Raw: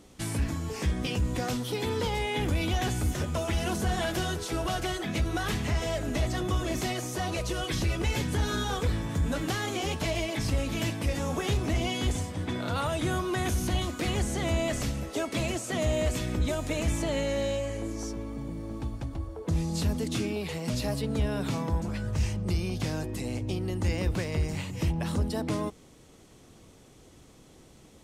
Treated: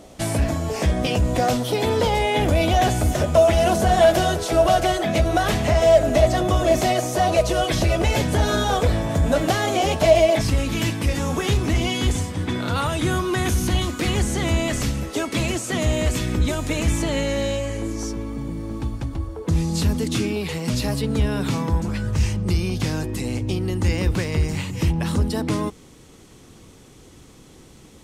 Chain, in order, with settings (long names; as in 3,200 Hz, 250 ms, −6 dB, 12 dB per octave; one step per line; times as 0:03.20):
parametric band 640 Hz +13 dB 0.49 octaves, from 0:10.41 −5 dB
level +7.5 dB